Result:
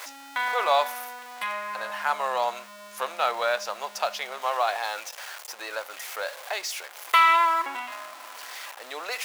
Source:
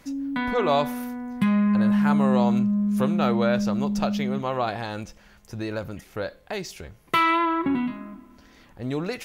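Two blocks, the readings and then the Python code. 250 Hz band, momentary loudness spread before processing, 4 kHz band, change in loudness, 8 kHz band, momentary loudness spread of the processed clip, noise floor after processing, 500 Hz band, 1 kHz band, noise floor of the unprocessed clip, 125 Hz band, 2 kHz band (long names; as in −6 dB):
−31.0 dB, 15 LU, +4.0 dB, −2.5 dB, +7.0 dB, 16 LU, −45 dBFS, −3.5 dB, +3.0 dB, −54 dBFS, below −35 dB, +3.5 dB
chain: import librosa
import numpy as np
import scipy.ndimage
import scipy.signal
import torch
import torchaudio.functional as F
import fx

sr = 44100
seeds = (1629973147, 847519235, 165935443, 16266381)

y = x + 0.5 * 10.0 ** (-34.5 / 20.0) * np.sign(x)
y = scipy.signal.sosfilt(scipy.signal.butter(4, 660.0, 'highpass', fs=sr, output='sos'), y)
y = y * 10.0 ** (2.5 / 20.0)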